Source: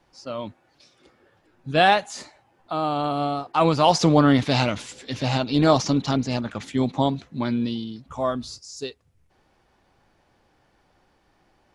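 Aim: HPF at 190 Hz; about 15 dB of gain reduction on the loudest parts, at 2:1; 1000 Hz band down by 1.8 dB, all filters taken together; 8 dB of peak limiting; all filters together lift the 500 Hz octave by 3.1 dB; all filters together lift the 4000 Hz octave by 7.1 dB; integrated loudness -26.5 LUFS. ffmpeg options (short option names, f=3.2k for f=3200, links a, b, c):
-af "highpass=190,equalizer=f=500:t=o:g=6,equalizer=f=1k:t=o:g=-6,equalizer=f=4k:t=o:g=9,acompressor=threshold=-40dB:ratio=2,volume=10dB,alimiter=limit=-14.5dB:level=0:latency=1"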